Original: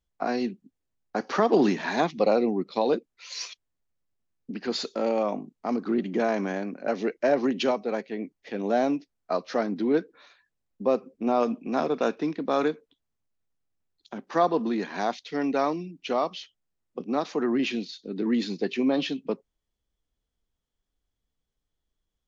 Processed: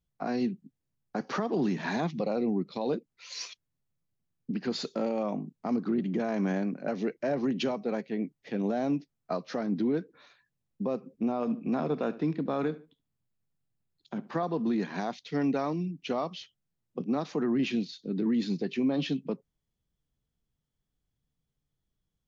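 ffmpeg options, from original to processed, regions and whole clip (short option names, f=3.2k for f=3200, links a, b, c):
-filter_complex "[0:a]asettb=1/sr,asplit=3[a][b][c];[a]atrim=end=11.324[d];[b]atrim=start=11.32:end=14.43,asetpts=PTS-STARTPTS,afade=t=in:d=0.004:c=qsin,afade=t=out:st=3.106:d=0.004:c=qsin,acrossover=split=3500[e][f];[f]acompressor=threshold=-52dB:ratio=4:attack=1:release=60[g];[e][g]amix=inputs=2:normalize=0,bandreject=f=5.9k:w=11,asplit=2[h][i];[i]adelay=72,lowpass=f=2.5k:p=1,volume=-18dB,asplit=2[j][k];[k]adelay=72,lowpass=f=2.5k:p=1,volume=0.28[l];[h][j][l]amix=inputs=3:normalize=0,atrim=end_sample=137151[m];[c]atrim=start=14.426[n];[d][m]acrossfade=d=0.004:c1=hsin:c2=qsin[o];[o][n]acrossfade=d=0.004:c1=qsin:c2=hsin,equalizer=f=140:w=1.1:g=13.5,alimiter=limit=-17dB:level=0:latency=1:release=173,volume=-3.5dB"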